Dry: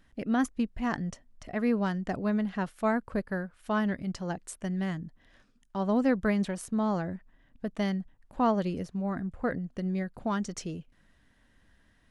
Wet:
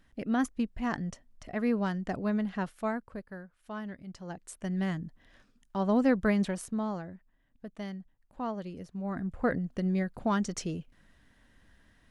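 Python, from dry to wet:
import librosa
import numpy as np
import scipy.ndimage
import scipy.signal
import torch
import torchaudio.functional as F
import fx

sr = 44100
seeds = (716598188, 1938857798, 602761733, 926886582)

y = fx.gain(x, sr, db=fx.line((2.7, -1.5), (3.22, -11.0), (4.05, -11.0), (4.79, 0.5), (6.55, 0.5), (7.12, -9.5), (8.73, -9.5), (9.36, 2.0)))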